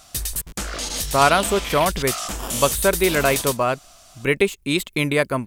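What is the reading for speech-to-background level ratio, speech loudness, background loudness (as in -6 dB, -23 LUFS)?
5.0 dB, -20.5 LUFS, -25.5 LUFS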